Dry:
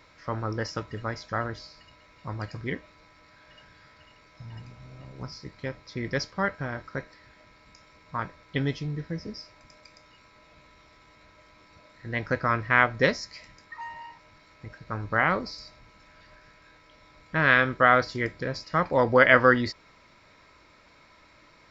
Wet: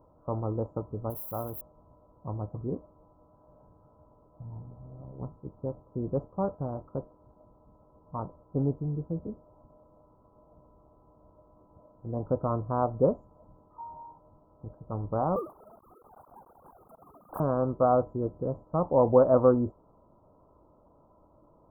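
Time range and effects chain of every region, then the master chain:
1.10–1.61 s: zero-crossing glitches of -26 dBFS + tilt shelf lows -4.5 dB, about 1.3 kHz
15.36–17.40 s: formants replaced by sine waves + high-pass 1.3 kHz + waveshaping leveller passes 5
whole clip: inverse Chebyshev band-stop 2–5.8 kHz, stop band 60 dB; resonant high shelf 1.6 kHz -7.5 dB, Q 3

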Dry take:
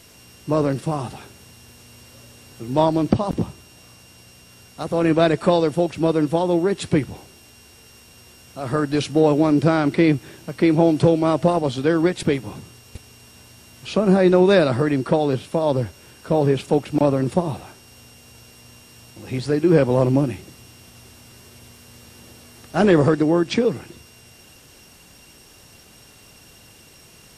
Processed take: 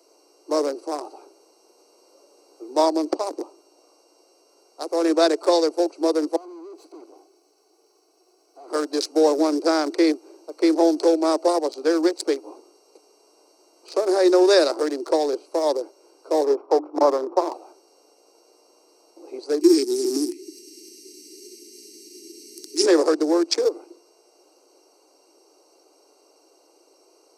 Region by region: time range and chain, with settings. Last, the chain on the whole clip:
6.36–8.70 s: comb filter that takes the minimum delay 2.7 ms + high-pass 110 Hz 24 dB/octave + valve stage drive 37 dB, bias 0.6
16.44–17.54 s: sorted samples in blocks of 8 samples + resonant low-pass 1.1 kHz, resonance Q 3 + hum notches 50/100/150/200/250/300/350 Hz
19.61–22.86 s: tone controls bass +14 dB, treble +9 dB + upward compressor, threshold -17 dBFS + brick-wall FIR band-stop 440–1800 Hz
whole clip: local Wiener filter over 25 samples; steep high-pass 310 Hz 72 dB/octave; resonant high shelf 3.9 kHz +9 dB, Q 3

